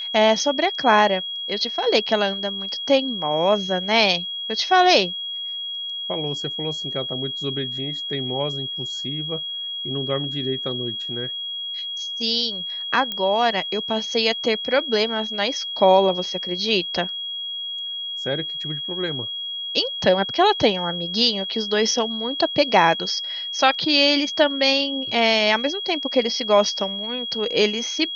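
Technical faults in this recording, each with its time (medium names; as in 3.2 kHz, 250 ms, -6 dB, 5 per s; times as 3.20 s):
whine 3.3 kHz -27 dBFS
13.12 s: pop -13 dBFS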